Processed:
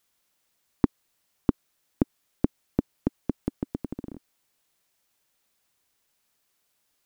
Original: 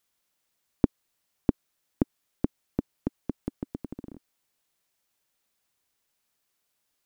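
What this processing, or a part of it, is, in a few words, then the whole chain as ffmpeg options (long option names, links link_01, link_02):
clipper into limiter: -af "asoftclip=type=hard:threshold=-7.5dB,alimiter=limit=-10dB:level=0:latency=1,volume=4dB"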